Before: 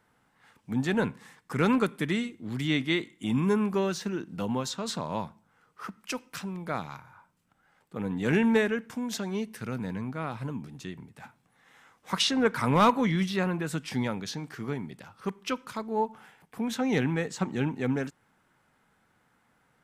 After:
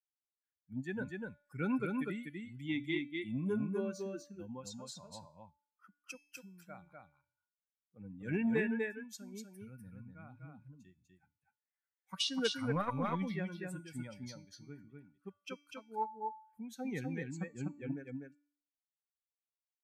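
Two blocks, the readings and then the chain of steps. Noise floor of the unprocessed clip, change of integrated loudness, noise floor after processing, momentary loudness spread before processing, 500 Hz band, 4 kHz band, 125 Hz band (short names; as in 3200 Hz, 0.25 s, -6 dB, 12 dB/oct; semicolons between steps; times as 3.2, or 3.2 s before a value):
-69 dBFS, -9.5 dB, under -85 dBFS, 14 LU, -11.0 dB, -9.0 dB, -11.0 dB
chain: per-bin expansion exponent 2; high shelf 10000 Hz -5 dB; resonator 290 Hz, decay 0.53 s, harmonics all, mix 60%; on a send: echo 0.247 s -3.5 dB; on the sum: core saturation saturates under 250 Hz; gain +1 dB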